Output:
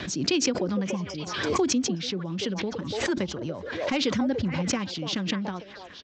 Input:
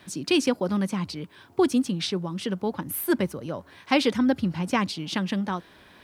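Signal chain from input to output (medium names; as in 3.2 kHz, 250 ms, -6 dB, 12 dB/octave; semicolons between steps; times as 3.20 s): spectral replace 0.87–1.18 s, 1.2–5 kHz after; in parallel at 0 dB: compression, threshold -26 dBFS, peak gain reduction 10.5 dB; on the sum: overload inside the chain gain 8.5 dB; resampled via 16 kHz; on a send: repeats whose band climbs or falls 289 ms, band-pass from 590 Hz, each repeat 1.4 oct, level -4 dB; on the sum: rotary cabinet horn 8 Hz; swell ahead of each attack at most 41 dB/s; trim -6 dB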